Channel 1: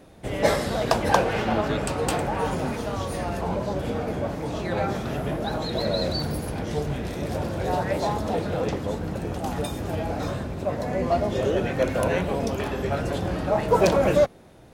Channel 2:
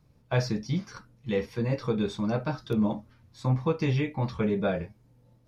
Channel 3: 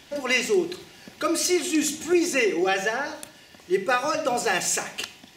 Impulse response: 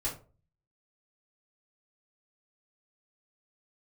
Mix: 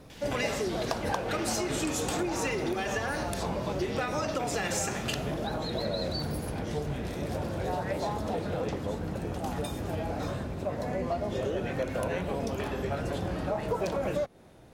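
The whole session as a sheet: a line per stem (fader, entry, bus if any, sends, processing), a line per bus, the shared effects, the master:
-4.0 dB, 0.00 s, no send, none
-2.5 dB, 0.00 s, no send, compression, threshold -29 dBFS, peak gain reduction 9.5 dB; spectrum-flattening compressor 2:1
0.0 dB, 0.10 s, no send, compression, threshold -24 dBFS, peak gain reduction 8.5 dB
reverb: none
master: compression, threshold -27 dBFS, peak gain reduction 10.5 dB

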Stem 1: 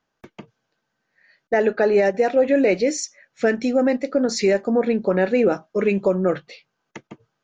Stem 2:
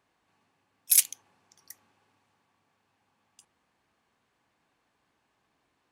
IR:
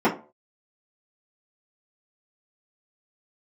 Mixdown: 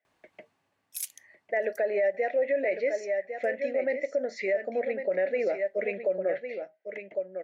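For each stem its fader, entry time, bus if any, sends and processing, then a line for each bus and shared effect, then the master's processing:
+2.0 dB, 0.00 s, no send, echo send -9.5 dB, two resonant band-passes 1.1 kHz, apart 1.7 oct
+3.0 dB, 0.05 s, no send, no echo send, compression 10:1, threshold -24 dBFS, peak gain reduction 10.5 dB; auto duck -12 dB, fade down 1.40 s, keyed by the first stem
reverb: none
echo: delay 1103 ms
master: peak limiter -19 dBFS, peak gain reduction 9 dB

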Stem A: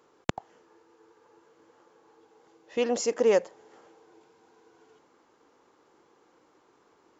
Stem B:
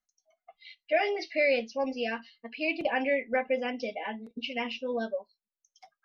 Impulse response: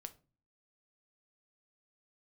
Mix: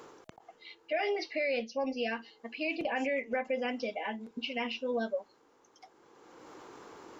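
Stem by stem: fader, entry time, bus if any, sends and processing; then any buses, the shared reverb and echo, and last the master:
-19.0 dB, 0.00 s, muted 1.43–2.09 s, no send, level flattener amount 70%; auto duck -15 dB, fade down 0.50 s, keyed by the second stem
-1.5 dB, 0.00 s, send -15 dB, none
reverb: on, RT60 0.35 s, pre-delay 6 ms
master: peak limiter -23.5 dBFS, peak gain reduction 7 dB

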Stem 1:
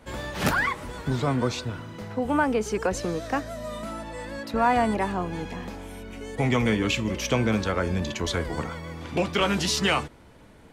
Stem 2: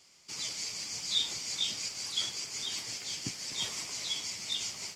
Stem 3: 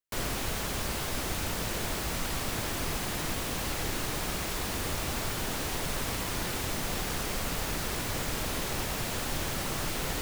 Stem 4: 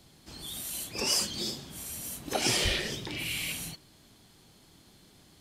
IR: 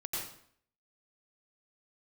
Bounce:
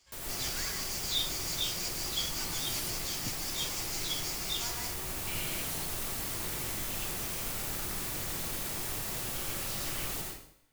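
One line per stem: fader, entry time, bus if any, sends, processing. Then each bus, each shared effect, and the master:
-14.5 dB, 0.00 s, bus A, send -4 dB, amplifier tone stack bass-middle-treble 10-0-10
-5.0 dB, 0.00 s, no bus, no send, waveshaping leveller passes 1
-0.5 dB, 0.00 s, bus A, send -12 dB, treble shelf 6.4 kHz +11.5 dB; auto duck -17 dB, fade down 0.20 s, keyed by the second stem
-0.5 dB, 2.10 s, muted 2.90–5.27 s, no bus, no send, compression, threshold -38 dBFS, peak gain reduction 14 dB
bus A: 0.0 dB, feedback comb 50 Hz, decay 0.83 s, harmonics all, mix 80%; peak limiter -34.5 dBFS, peak gain reduction 10 dB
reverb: on, RT60 0.60 s, pre-delay 84 ms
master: none

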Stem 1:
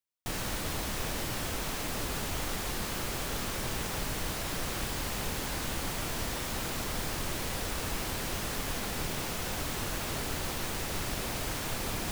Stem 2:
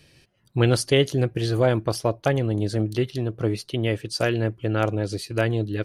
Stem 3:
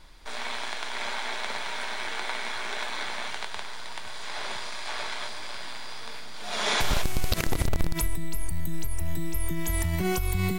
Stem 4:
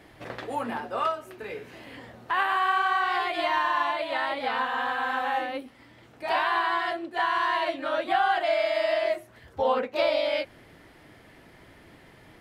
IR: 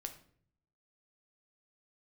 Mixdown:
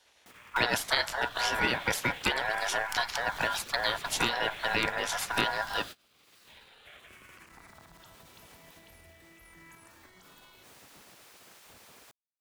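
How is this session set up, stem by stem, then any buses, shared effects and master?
-12.0 dB, 0.00 s, bus A, no send, none
+0.5 dB, 0.00 s, no bus, send -10.5 dB, level rider gain up to 5 dB; ring modulator 1.2 kHz
-9.5 dB, 0.05 s, bus A, no send, high-order bell 1.4 kHz +13.5 dB 3 oct; barber-pole phaser -0.44 Hz
mute
bus A: 0.0 dB, peak limiter -35 dBFS, peak gain reduction 20.5 dB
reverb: on, RT60 0.55 s, pre-delay 7 ms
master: gate -34 dBFS, range -27 dB; spectral gate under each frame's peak -10 dB weak; three bands compressed up and down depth 70%

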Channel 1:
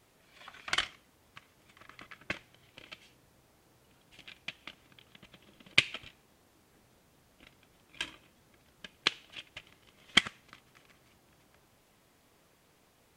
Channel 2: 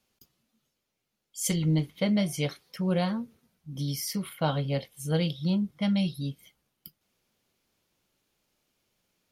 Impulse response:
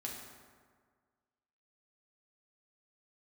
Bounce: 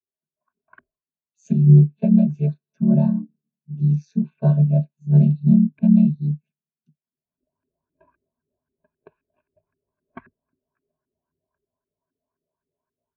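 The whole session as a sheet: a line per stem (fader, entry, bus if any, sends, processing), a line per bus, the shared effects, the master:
-7.5 dB, 0.00 s, no send, LFO low-pass saw up 3.8 Hz 300–1600 Hz; auto duck -18 dB, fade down 1.50 s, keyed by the second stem
+2.5 dB, 0.00 s, no send, vocoder on a held chord major triad, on D3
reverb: none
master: rippled EQ curve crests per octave 1.5, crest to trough 11 dB; level rider gain up to 12.5 dB; spectral contrast expander 1.5:1

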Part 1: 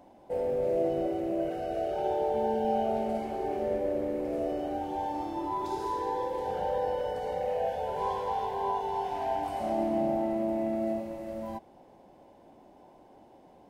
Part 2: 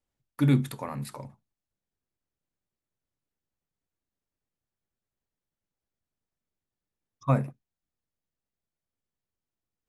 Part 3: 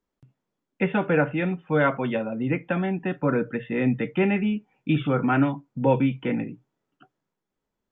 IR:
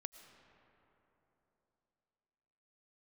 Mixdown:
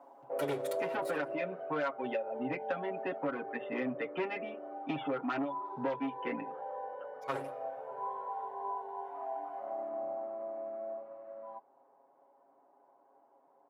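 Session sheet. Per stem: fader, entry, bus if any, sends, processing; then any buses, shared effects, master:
1.19 s -4.5 dB -> 1.85 s -14 dB, 0.00 s, no send, resonant low-pass 1.2 kHz, resonance Q 2.9
+1.5 dB, 0.00 s, send -13 dB, comb filter that takes the minimum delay 2.1 ms; auto duck -17 dB, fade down 1.90 s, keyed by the third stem
-1.0 dB, 0.00 s, no send, reverb removal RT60 1.6 s; low-pass 1.3 kHz 6 dB/octave; saturation -21 dBFS, distortion -12 dB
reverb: on, RT60 3.5 s, pre-delay 70 ms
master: high-pass 410 Hz 12 dB/octave; comb 7.3 ms, depth 92%; compression 6:1, threshold -31 dBFS, peak gain reduction 10.5 dB

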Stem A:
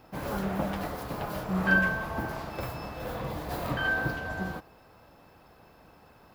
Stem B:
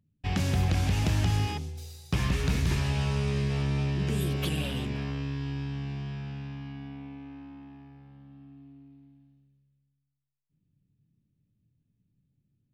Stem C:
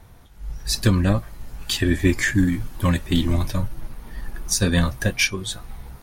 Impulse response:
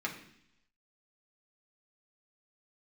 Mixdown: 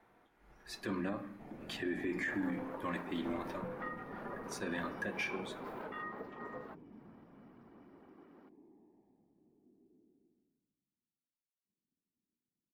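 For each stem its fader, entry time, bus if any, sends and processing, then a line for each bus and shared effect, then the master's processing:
-4.0 dB, 2.15 s, no send, reverb removal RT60 0.61 s; compression, threshold -33 dBFS, peak gain reduction 13.5 dB; ring modulator 320 Hz
-13.0 dB, 1.15 s, no send, whisper effect; boxcar filter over 31 samples
-13.5 dB, 0.00 s, send -5 dB, none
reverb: on, RT60 0.70 s, pre-delay 3 ms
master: three-band isolator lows -22 dB, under 230 Hz, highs -16 dB, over 2.5 kHz; peak limiter -28 dBFS, peak gain reduction 8.5 dB

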